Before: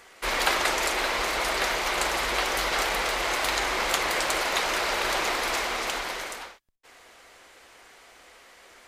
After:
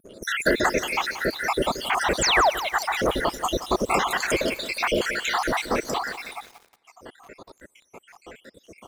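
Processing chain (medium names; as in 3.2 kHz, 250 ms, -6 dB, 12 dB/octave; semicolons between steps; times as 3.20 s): random holes in the spectrogram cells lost 78%; on a send: multi-head delay 74 ms, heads second and third, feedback 52%, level -19 dB; on the sum: painted sound fall, 2.21–2.50 s, 560–8500 Hz -26 dBFS; in parallel at -2 dB: compression 5:1, threshold -47 dBFS, peak gain reduction 22 dB; on the sum: treble shelf 3.3 kHz -5 dB; vibrato 2.3 Hz 25 cents; peaking EQ 190 Hz +12.5 dB 2.5 oct; waveshaping leveller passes 1; reverb removal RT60 1.8 s; bit-crushed delay 178 ms, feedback 55%, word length 7-bit, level -11.5 dB; trim +3 dB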